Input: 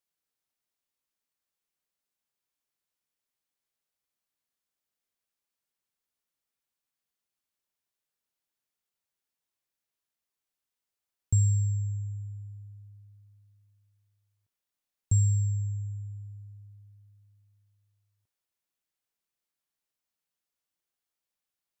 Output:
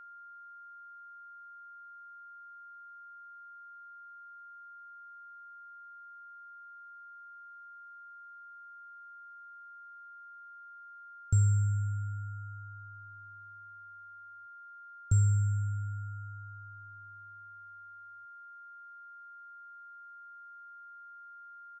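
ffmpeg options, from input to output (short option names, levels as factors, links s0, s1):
-af "aresample=16000,aresample=44100,aeval=exprs='val(0)+0.00501*sin(2*PI*1400*n/s)':c=same,aeval=exprs='0.178*(cos(1*acos(clip(val(0)/0.178,-1,1)))-cos(1*PI/2))+0.00224*(cos(6*acos(clip(val(0)/0.178,-1,1)))-cos(6*PI/2))':c=same,volume=0.841"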